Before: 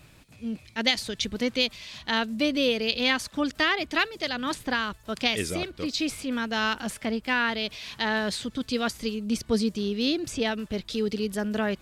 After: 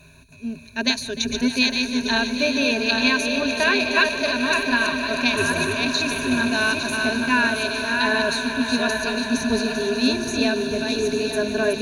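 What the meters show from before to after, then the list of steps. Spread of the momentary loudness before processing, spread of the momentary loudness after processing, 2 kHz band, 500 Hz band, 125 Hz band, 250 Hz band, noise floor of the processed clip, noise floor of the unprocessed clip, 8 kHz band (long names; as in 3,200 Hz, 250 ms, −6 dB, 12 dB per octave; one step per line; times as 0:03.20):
7 LU, 4 LU, +8.5 dB, +6.0 dB, +3.5 dB, +5.5 dB, −41 dBFS, −54 dBFS, +8.0 dB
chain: feedback delay that plays each chunk backwards 427 ms, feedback 48%, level −4 dB
EQ curve with evenly spaced ripples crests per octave 1.5, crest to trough 18 dB
echo that builds up and dies away 151 ms, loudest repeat 5, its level −14.5 dB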